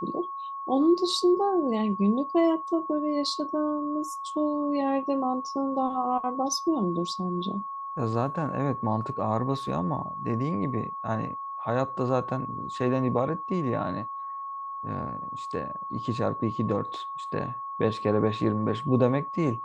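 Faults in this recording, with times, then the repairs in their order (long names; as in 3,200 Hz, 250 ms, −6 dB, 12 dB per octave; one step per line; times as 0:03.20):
whistle 1,100 Hz −33 dBFS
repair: notch filter 1,100 Hz, Q 30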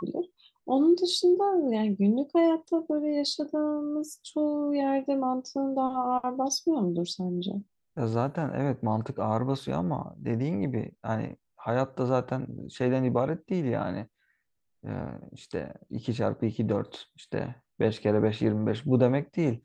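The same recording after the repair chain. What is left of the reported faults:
none of them is left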